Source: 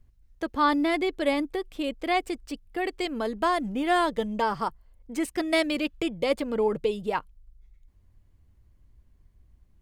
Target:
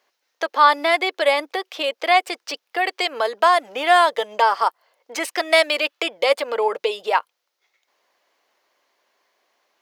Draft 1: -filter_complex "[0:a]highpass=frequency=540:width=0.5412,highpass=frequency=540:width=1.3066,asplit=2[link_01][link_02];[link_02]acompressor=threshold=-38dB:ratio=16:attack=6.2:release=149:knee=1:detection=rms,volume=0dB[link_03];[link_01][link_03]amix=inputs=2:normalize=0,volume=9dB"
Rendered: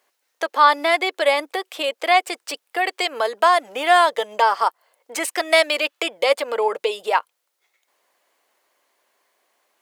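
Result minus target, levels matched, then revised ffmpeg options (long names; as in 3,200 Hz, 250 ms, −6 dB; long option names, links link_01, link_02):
8,000 Hz band +3.5 dB
-filter_complex "[0:a]highpass=frequency=540:width=0.5412,highpass=frequency=540:width=1.3066,asplit=2[link_01][link_02];[link_02]acompressor=threshold=-38dB:ratio=16:attack=6.2:release=149:knee=1:detection=rms,lowpass=frequency=6100:width_type=q:width=1.7[link_03];[link_01][link_03]amix=inputs=2:normalize=0,volume=9dB"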